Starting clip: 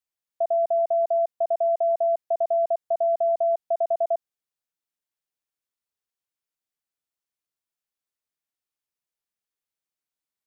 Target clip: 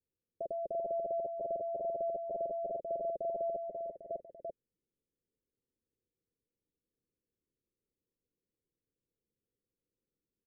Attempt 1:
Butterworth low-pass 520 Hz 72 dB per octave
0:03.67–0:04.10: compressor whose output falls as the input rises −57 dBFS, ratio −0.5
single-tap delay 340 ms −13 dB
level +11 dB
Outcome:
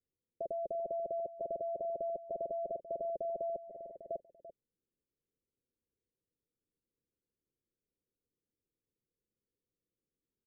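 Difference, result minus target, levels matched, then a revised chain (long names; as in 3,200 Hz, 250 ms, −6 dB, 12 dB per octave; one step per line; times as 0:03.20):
echo-to-direct −10 dB
Butterworth low-pass 520 Hz 72 dB per octave
0:03.67–0:04.10: compressor whose output falls as the input rises −57 dBFS, ratio −0.5
single-tap delay 340 ms −3 dB
level +11 dB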